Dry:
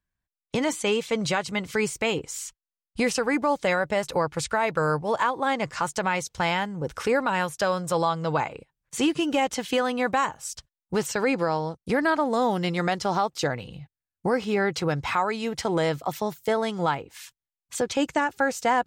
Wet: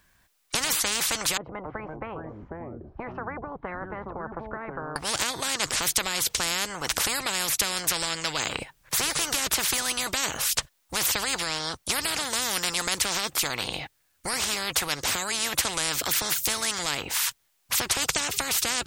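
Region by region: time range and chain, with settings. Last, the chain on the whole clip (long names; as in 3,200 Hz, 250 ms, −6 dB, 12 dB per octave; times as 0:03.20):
0:01.37–0:04.96: transistor ladder low-pass 720 Hz, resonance 35% + delay with pitch and tempo change per echo 276 ms, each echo −5 semitones, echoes 3, each echo −6 dB
whole clip: low-shelf EQ 310 Hz −9 dB; every bin compressed towards the loudest bin 10 to 1; level +6 dB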